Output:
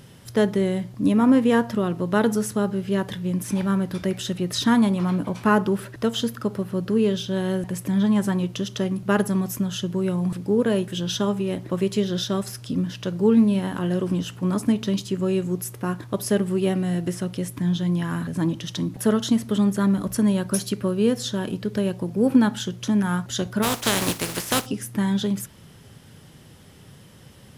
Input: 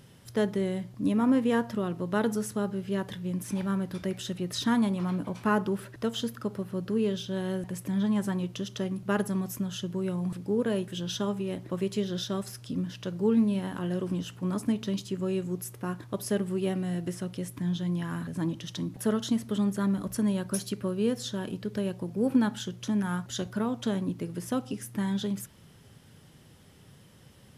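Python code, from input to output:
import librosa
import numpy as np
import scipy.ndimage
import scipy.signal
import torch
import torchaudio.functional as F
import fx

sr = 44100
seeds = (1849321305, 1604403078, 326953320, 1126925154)

y = fx.spec_flatten(x, sr, power=0.39, at=(23.62, 24.65), fade=0.02)
y = y * librosa.db_to_amplitude(7.0)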